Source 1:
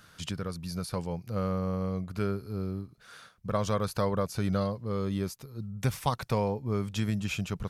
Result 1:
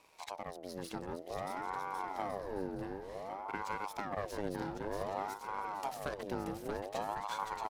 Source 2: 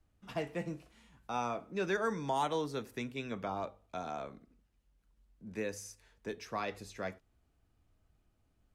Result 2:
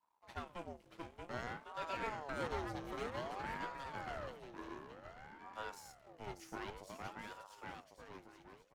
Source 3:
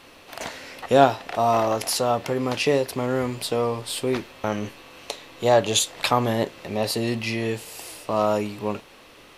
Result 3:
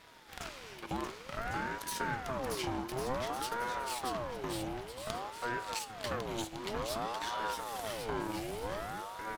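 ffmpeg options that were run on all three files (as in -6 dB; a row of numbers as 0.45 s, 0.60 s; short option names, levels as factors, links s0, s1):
-af "aeval=exprs='if(lt(val(0),0),0.251*val(0),val(0))':c=same,acompressor=threshold=0.0355:ratio=6,aecho=1:1:630|1102|1457|1723|1922:0.631|0.398|0.251|0.158|0.1,aeval=exprs='val(0)*sin(2*PI*650*n/s+650*0.5/0.54*sin(2*PI*0.54*n/s))':c=same,volume=0.668"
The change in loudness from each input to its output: -8.5 LU, -7.5 LU, -14.5 LU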